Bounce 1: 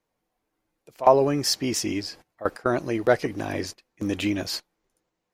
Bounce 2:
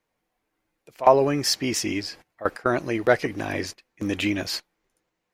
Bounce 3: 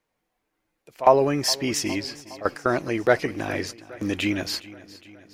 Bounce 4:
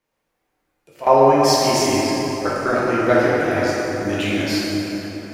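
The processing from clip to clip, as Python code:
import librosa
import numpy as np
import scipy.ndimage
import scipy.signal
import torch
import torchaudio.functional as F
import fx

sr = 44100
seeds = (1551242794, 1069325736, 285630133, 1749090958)

y1 = fx.peak_eq(x, sr, hz=2100.0, db=5.0, octaves=1.3)
y2 = fx.echo_feedback(y1, sr, ms=413, feedback_pct=59, wet_db=-19.0)
y3 = fx.rev_plate(y2, sr, seeds[0], rt60_s=4.0, hf_ratio=0.5, predelay_ms=0, drr_db=-7.5)
y3 = F.gain(torch.from_numpy(y3), -2.0).numpy()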